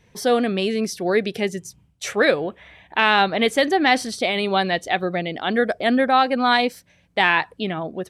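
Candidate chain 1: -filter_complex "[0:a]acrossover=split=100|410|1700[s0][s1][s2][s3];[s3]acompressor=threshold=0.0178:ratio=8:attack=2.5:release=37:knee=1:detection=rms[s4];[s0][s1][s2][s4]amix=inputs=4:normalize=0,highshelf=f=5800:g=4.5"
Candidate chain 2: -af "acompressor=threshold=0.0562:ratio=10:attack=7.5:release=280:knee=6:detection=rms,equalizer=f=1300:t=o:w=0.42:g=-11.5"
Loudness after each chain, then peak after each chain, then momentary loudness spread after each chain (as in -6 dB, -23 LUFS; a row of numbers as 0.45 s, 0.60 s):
-22.0 LUFS, -32.0 LUFS; -6.0 dBFS, -15.0 dBFS; 9 LU, 7 LU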